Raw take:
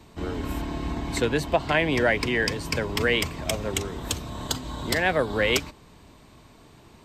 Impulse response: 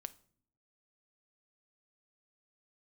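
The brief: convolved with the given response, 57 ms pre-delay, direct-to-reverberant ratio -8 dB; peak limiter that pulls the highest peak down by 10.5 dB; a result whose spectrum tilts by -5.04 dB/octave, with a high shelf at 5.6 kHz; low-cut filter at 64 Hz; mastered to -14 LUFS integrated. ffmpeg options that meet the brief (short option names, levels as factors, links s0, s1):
-filter_complex "[0:a]highpass=64,highshelf=f=5600:g=-5,alimiter=limit=0.1:level=0:latency=1,asplit=2[s0][s1];[1:a]atrim=start_sample=2205,adelay=57[s2];[s1][s2]afir=irnorm=-1:irlink=0,volume=3.98[s3];[s0][s3]amix=inputs=2:normalize=0,volume=2.66"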